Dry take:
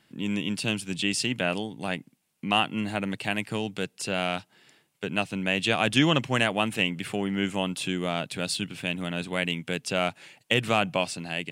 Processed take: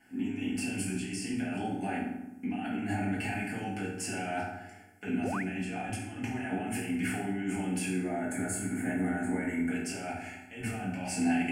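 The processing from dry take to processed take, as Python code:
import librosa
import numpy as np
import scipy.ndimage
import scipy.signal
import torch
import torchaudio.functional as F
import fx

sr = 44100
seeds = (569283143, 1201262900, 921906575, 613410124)

y = fx.spec_box(x, sr, start_s=7.87, length_s=1.83, low_hz=2300.0, high_hz=6300.0, gain_db=-17)
y = fx.over_compress(y, sr, threshold_db=-34.0, ratio=-1.0)
y = fx.high_shelf(y, sr, hz=7100.0, db=-4.5)
y = fx.fixed_phaser(y, sr, hz=760.0, stages=8)
y = fx.rev_fdn(y, sr, rt60_s=0.92, lf_ratio=1.5, hf_ratio=0.65, size_ms=12.0, drr_db=-8.5)
y = fx.spec_paint(y, sr, seeds[0], shape='rise', start_s=5.23, length_s=0.2, low_hz=300.0, high_hz=2400.0, level_db=-30.0)
y = fx.low_shelf(y, sr, hz=140.0, db=4.5)
y = y * librosa.db_to_amplitude(-6.5)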